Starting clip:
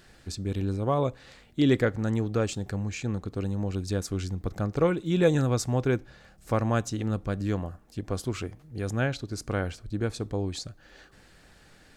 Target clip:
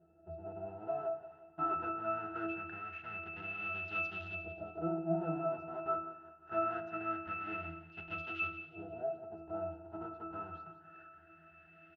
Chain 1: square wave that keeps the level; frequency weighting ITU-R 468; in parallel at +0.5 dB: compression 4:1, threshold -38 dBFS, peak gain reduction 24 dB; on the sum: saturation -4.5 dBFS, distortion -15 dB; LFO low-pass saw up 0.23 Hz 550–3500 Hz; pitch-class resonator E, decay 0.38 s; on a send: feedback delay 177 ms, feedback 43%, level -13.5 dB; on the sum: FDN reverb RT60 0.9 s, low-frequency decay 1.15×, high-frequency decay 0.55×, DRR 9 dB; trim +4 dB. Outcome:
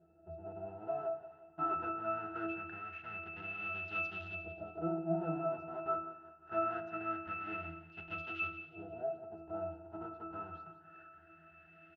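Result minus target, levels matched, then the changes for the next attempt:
compression: peak gain reduction +4.5 dB
change: compression 4:1, threshold -32 dBFS, peak gain reduction 19.5 dB

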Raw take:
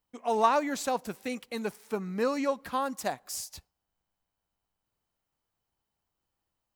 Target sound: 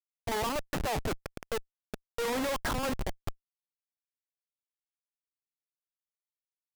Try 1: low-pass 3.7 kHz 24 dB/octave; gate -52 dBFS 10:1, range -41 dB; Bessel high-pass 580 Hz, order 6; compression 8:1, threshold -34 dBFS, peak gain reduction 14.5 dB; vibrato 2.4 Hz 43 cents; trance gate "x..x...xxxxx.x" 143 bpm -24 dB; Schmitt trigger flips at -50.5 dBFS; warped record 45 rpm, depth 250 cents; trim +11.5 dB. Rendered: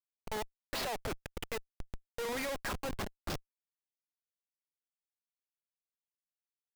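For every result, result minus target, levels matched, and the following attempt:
compression: peak gain reduction +14.5 dB; 4 kHz band +2.5 dB
low-pass 3.7 kHz 24 dB/octave; gate -52 dBFS 10:1, range -41 dB; Bessel high-pass 580 Hz, order 6; vibrato 2.4 Hz 43 cents; trance gate "x..x...xxxxx.x" 143 bpm -24 dB; Schmitt trigger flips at -50.5 dBFS; warped record 45 rpm, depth 250 cents; trim +11.5 dB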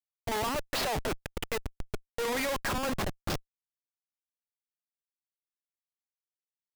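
4 kHz band +2.5 dB
low-pass 1.7 kHz 24 dB/octave; gate -52 dBFS 10:1, range -41 dB; Bessel high-pass 580 Hz, order 6; vibrato 2.4 Hz 43 cents; trance gate "x..x...xxxxx.x" 143 bpm -24 dB; Schmitt trigger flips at -50.5 dBFS; warped record 45 rpm, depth 250 cents; trim +11.5 dB

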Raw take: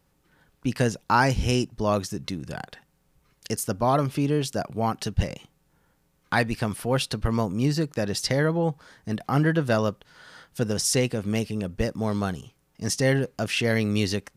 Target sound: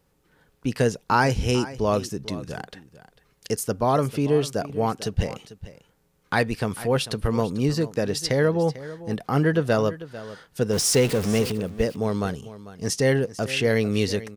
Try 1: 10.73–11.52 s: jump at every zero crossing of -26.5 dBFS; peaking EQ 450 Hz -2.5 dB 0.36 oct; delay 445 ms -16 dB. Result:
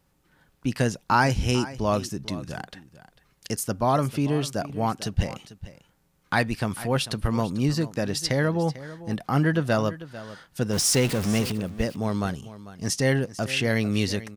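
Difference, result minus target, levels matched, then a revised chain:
500 Hz band -3.5 dB
10.73–11.52 s: jump at every zero crossing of -26.5 dBFS; peaking EQ 450 Hz +6.5 dB 0.36 oct; delay 445 ms -16 dB

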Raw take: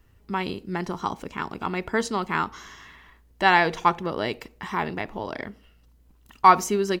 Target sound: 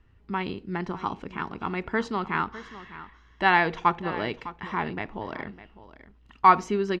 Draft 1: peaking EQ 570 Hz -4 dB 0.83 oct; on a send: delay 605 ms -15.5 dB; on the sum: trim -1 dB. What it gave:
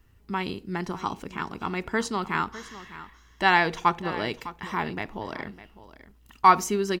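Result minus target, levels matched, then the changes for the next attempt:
4 kHz band +3.5 dB
add first: low-pass 3.2 kHz 12 dB/octave

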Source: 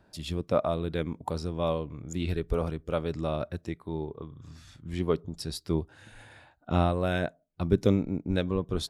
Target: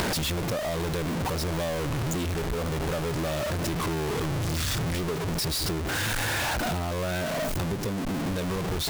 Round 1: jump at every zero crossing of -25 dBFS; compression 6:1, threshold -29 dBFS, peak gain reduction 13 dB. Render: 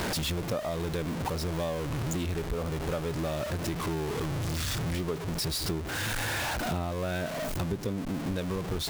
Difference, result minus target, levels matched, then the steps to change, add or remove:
jump at every zero crossing: distortion -6 dB
change: jump at every zero crossing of -13.5 dBFS

